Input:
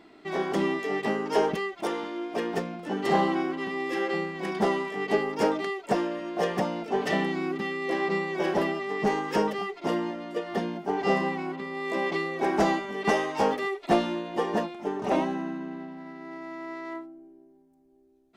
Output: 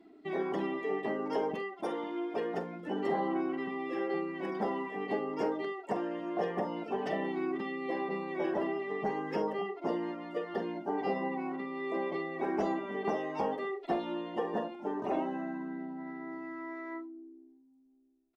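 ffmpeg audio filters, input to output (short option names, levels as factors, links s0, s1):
-filter_complex "[0:a]aphaser=in_gain=1:out_gain=1:delay=4:decay=0.24:speed=0.31:type=sinusoidal,acrossover=split=240|930[s0][s1][s2];[s0]acompressor=threshold=0.00562:ratio=4[s3];[s1]acompressor=threshold=0.0447:ratio=4[s4];[s2]acompressor=threshold=0.00891:ratio=4[s5];[s3][s4][s5]amix=inputs=3:normalize=0,aecho=1:1:45|72:0.355|0.15,afftdn=nr=13:nf=-45,volume=0.668"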